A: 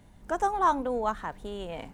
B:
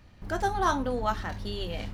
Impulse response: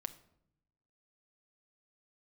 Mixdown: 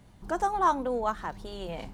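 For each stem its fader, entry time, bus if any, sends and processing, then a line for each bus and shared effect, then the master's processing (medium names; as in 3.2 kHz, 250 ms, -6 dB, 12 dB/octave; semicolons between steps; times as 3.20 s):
-0.5 dB, 0.00 s, no send, high-pass 47 Hz
-0.5 dB, 0.00 s, polarity flipped, no send, compression 3:1, threshold -34 dBFS, peak gain reduction 10.5 dB; static phaser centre 380 Hz, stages 8; rotary cabinet horn 7 Hz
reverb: none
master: none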